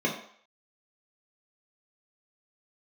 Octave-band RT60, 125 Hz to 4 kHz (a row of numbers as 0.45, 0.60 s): 0.35, 0.45, 0.55, 0.60, 0.55, 0.55 s